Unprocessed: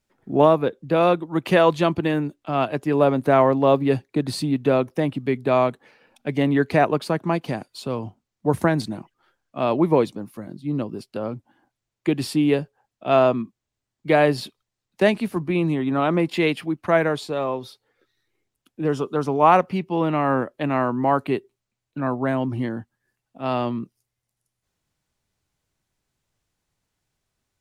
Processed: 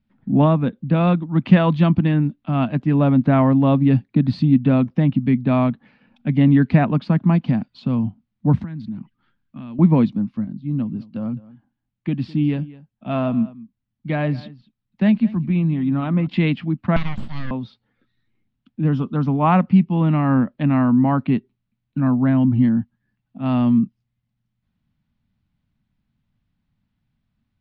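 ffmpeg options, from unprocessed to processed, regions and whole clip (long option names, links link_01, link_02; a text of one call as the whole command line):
ffmpeg -i in.wav -filter_complex "[0:a]asettb=1/sr,asplit=3[link_01][link_02][link_03];[link_01]atrim=end=8.634[link_04];[link_02]atrim=start=8.63:end=9.79,asetpts=PTS-STARTPTS,afade=type=in:duration=0.004:curve=qsin,afade=type=out:start_time=1.156:duration=0.004:curve=qsin,equalizer=frequency=670:width_type=o:width=0.89:gain=-9.5,acompressor=threshold=-39dB:ratio=4:attack=3.2:release=140:knee=1:detection=peak[link_05];[link_03]atrim=start=9.786[link_06];[link_04][link_05]acrossfade=duration=0.004:curve1=hsin:curve2=qsin[link_07];[link_07][link_06]acrossfade=duration=0.004:curve1=qsin:curve2=hsin,asettb=1/sr,asplit=3[link_08][link_09][link_10];[link_08]atrim=end=10.444[link_11];[link_09]atrim=start=10.44:end=16.27,asetpts=PTS-STARTPTS,afade=type=in:duration=0.004:curve=qsin,afade=type=out:start_time=5.826:duration=0.004:curve=qsin,flanger=delay=0.3:depth=1.6:regen=82:speed=2:shape=sinusoidal,aecho=1:1:209:0.106,atrim=end_sample=257103[link_12];[link_10]atrim=start=16.266[link_13];[link_11][link_12]acrossfade=duration=0.004:curve1=hsin:curve2=qsin[link_14];[link_14][link_13]acrossfade=duration=0.004:curve1=qsin:curve2=hsin,asettb=1/sr,asplit=3[link_15][link_16][link_17];[link_15]atrim=end=16.964[link_18];[link_16]atrim=start=16.96:end=17.51,asetpts=PTS-STARTPTS,afade=type=in:duration=0.004:curve=qsin,afade=type=out:start_time=0.546:duration=0.004:curve=qsin,highpass=frequency=920:poles=1,equalizer=frequency=4000:width_type=o:width=0.22:gain=12,aeval=exprs='abs(val(0))':channel_layout=same[link_19];[link_17]atrim=start=17.506[link_20];[link_18][link_19]acrossfade=duration=0.004:curve1=hsin:curve2=qsin[link_21];[link_21][link_20]acrossfade=duration=0.004:curve1=qsin:curve2=hsin,lowpass=frequency=3900:width=0.5412,lowpass=frequency=3900:width=1.3066,lowshelf=frequency=300:width_type=q:width=3:gain=9.5,volume=-2dB" out.wav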